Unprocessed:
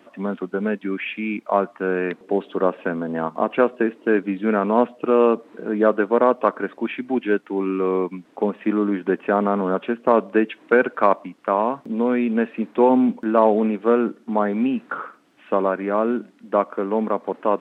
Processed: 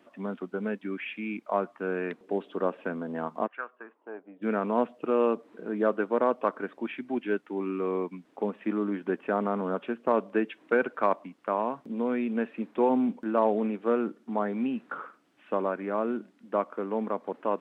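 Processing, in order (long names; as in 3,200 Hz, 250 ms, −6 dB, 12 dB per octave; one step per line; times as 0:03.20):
0:03.46–0:04.41: resonant band-pass 1,800 Hz → 570 Hz, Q 3.6
level −8.5 dB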